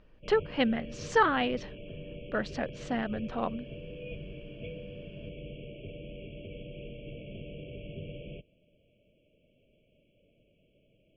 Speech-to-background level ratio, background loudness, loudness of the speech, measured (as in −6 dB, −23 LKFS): 14.0 dB, −44.5 LKFS, −30.5 LKFS